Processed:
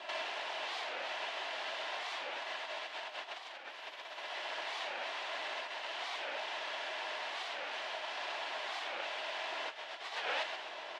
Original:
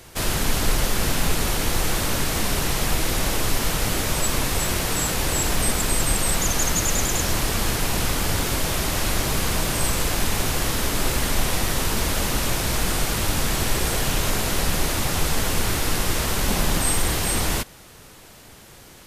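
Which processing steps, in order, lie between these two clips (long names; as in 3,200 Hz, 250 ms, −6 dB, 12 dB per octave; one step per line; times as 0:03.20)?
in parallel at −10 dB: soft clipping −20.5 dBFS, distortion −12 dB
on the sum: first difference
dead-zone distortion −53 dBFS
wrong playback speed 45 rpm record played at 78 rpm
comb filter 3 ms, depth 69%
echo with shifted repeats 130 ms, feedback 44%, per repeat +130 Hz, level −3.5 dB
compressor whose output falls as the input rises −34 dBFS, ratio −1
loudspeaker in its box 480–2,800 Hz, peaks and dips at 620 Hz +9 dB, 880 Hz +6 dB, 1,300 Hz −5 dB, 2,300 Hz −5 dB
wow of a warped record 45 rpm, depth 250 cents
level +12 dB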